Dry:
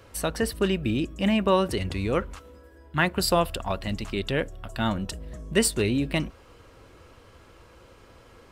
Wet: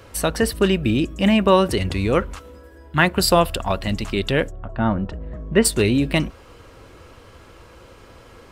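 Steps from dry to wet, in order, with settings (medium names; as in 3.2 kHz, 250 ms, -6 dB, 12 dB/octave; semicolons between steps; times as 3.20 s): 4.50–5.64 s: low-pass 1.1 kHz -> 2.1 kHz 12 dB/octave; trim +6.5 dB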